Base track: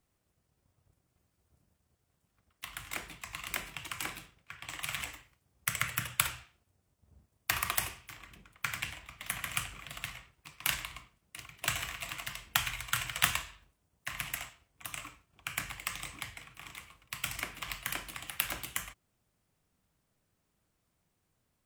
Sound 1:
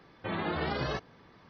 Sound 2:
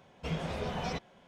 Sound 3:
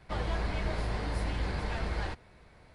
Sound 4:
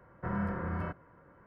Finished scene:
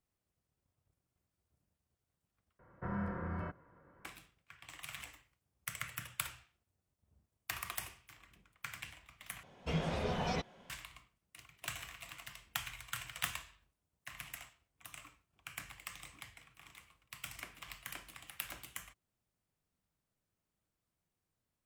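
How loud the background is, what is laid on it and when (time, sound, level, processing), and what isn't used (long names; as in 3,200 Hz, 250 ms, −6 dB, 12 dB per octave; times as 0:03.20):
base track −10 dB
0:02.59: overwrite with 4 −5 dB
0:09.43: overwrite with 2 −0.5 dB
not used: 1, 3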